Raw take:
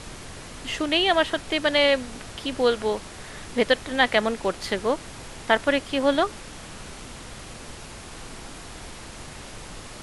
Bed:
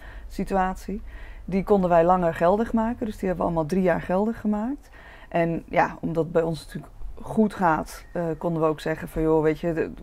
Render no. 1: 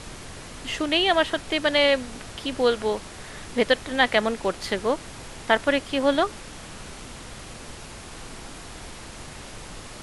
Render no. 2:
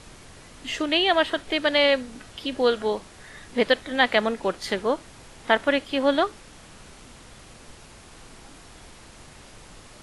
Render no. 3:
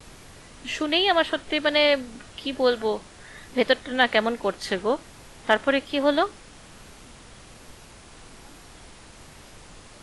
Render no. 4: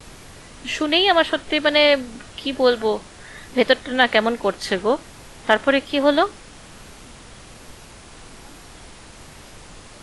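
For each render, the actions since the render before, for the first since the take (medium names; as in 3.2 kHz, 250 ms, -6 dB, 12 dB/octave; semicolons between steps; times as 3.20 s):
no audible change
noise print and reduce 7 dB
vibrato 1.2 Hz 61 cents; hard clipper -5.5 dBFS, distortion -39 dB
trim +4.5 dB; peak limiter -2 dBFS, peak gain reduction 1 dB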